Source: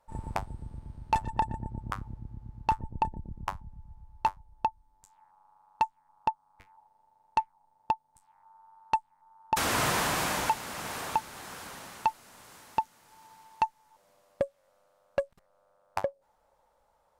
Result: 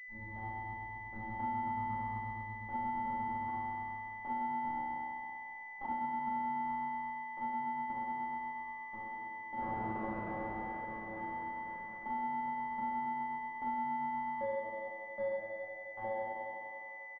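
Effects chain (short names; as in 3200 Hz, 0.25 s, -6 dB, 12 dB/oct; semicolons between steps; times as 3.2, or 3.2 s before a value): rotary speaker horn 6.3 Hz; resonator 110 Hz, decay 1.1 s, harmonics all, mix 100%; sample leveller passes 1; comb 3.6 ms, depth 67%; frequency-shifting echo 0.212 s, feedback 43%, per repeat +97 Hz, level -17.5 dB; 4.65–5.85 monotone LPC vocoder at 8 kHz 270 Hz; reverb RT60 3.0 s, pre-delay 5 ms, DRR -5.5 dB; compressor, threshold -32 dBFS, peak gain reduction 6 dB; pulse-width modulation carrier 2000 Hz; gain +1 dB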